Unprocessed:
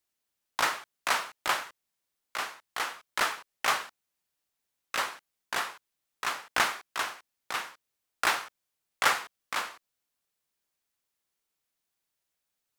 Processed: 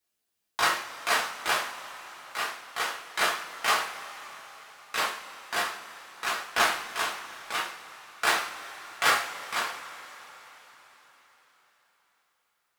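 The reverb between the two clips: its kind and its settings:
coupled-rooms reverb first 0.32 s, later 4.7 s, from −21 dB, DRR −4 dB
level −2.5 dB

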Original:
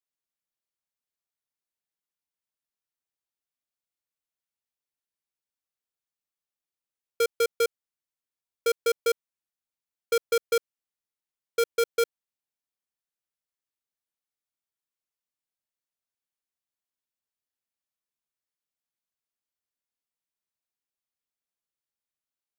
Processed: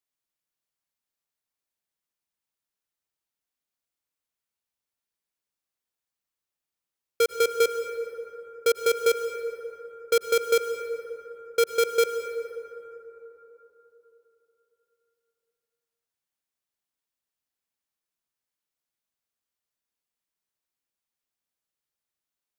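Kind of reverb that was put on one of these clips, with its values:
dense smooth reverb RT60 3.7 s, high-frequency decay 0.35×, pre-delay 80 ms, DRR 7.5 dB
level +2.5 dB

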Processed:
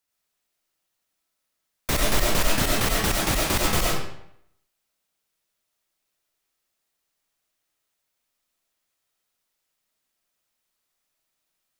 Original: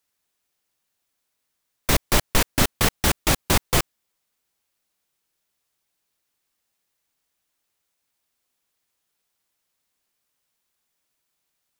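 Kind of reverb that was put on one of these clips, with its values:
comb and all-pass reverb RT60 0.73 s, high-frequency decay 0.85×, pre-delay 55 ms, DRR −2.5 dB
level −5 dB

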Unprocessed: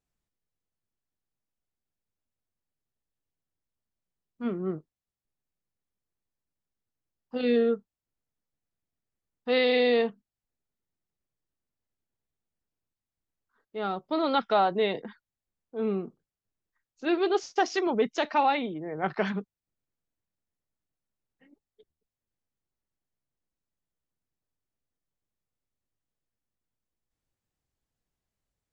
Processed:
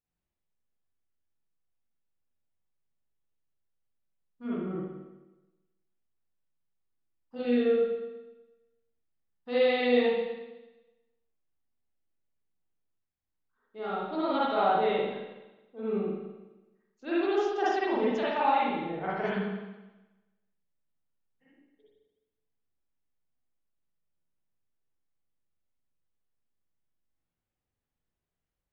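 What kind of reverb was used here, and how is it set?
spring reverb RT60 1.1 s, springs 41/53 ms, chirp 40 ms, DRR −9 dB
level −11 dB

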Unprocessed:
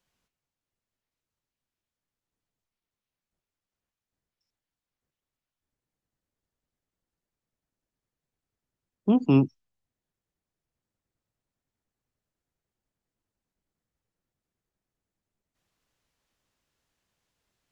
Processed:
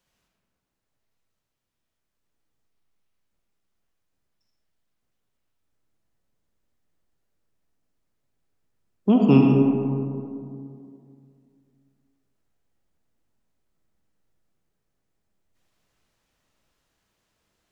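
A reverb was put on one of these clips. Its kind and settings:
comb and all-pass reverb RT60 2.5 s, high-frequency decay 0.35×, pre-delay 25 ms, DRR 0 dB
level +3.5 dB

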